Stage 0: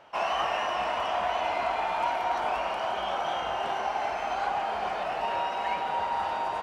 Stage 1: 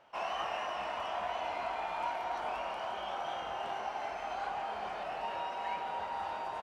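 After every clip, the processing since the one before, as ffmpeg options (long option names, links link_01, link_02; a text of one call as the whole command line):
ffmpeg -i in.wav -filter_complex "[0:a]asplit=2[link_01][link_02];[link_02]adelay=24,volume=-11dB[link_03];[link_01][link_03]amix=inputs=2:normalize=0,volume=-8.5dB" out.wav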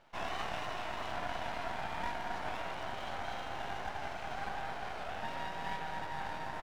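ffmpeg -i in.wav -af "aeval=exprs='max(val(0),0)':channel_layout=same,volume=2dB" out.wav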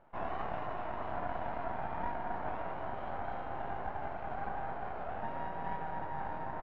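ffmpeg -i in.wav -af "lowpass=1200,volume=2.5dB" out.wav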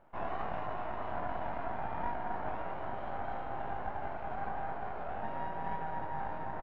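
ffmpeg -i in.wav -filter_complex "[0:a]asplit=2[link_01][link_02];[link_02]adelay=19,volume=-11dB[link_03];[link_01][link_03]amix=inputs=2:normalize=0" out.wav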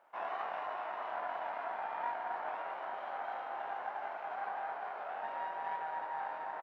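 ffmpeg -i in.wav -af "highpass=690,volume=1.5dB" out.wav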